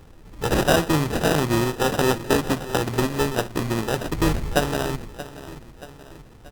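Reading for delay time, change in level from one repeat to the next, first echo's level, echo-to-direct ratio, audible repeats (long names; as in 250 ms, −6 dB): 630 ms, −5.5 dB, −15.5 dB, −14.0 dB, 3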